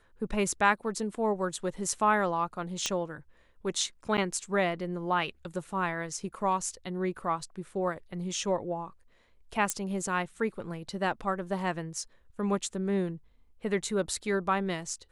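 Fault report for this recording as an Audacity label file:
2.860000	2.860000	pop -13 dBFS
4.170000	4.180000	dropout 8.6 ms
9.700000	9.700000	pop -13 dBFS

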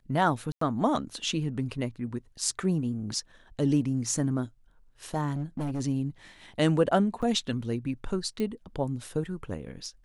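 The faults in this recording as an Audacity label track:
0.520000	0.610000	dropout 94 ms
5.330000	5.810000	clipped -27.5 dBFS
7.220000	7.230000	dropout 6.5 ms
8.400000	8.400000	pop -20 dBFS

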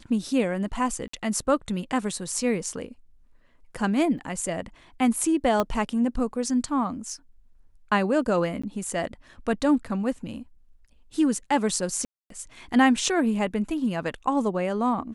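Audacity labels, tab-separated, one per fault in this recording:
1.080000	1.130000	dropout 54 ms
4.180000	4.180000	dropout 4.7 ms
5.600000	5.600000	pop -11 dBFS
8.620000	8.630000	dropout 15 ms
12.050000	12.300000	dropout 253 ms

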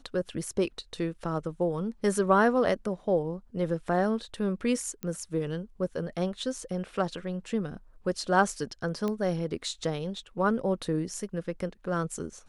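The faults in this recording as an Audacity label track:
5.030000	5.030000	pop -21 dBFS
9.080000	9.080000	pop -19 dBFS

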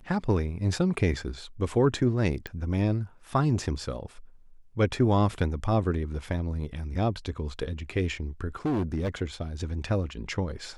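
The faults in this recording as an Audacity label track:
2.470000	2.470000	pop -21 dBFS
8.650000	9.090000	clipped -24 dBFS

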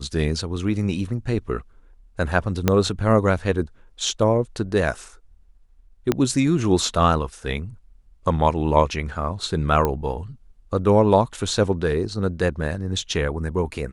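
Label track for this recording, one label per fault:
2.680000	2.680000	pop -3 dBFS
6.120000	6.120000	pop -6 dBFS
9.850000	9.850000	pop -9 dBFS

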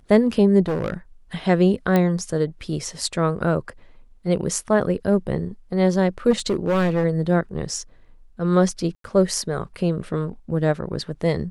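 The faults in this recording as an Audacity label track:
0.660000	0.940000	clipped -19.5 dBFS
1.960000	1.960000	pop -8 dBFS
6.300000	7.050000	clipped -16 dBFS
8.950000	9.040000	dropout 93 ms

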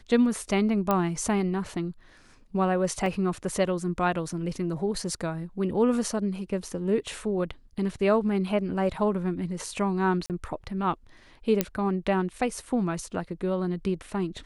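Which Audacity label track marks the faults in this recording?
0.910000	0.910000	pop -11 dBFS
3.060000	3.060000	dropout 2.2 ms
10.260000	10.300000	dropout 38 ms
11.610000	11.610000	pop -7 dBFS

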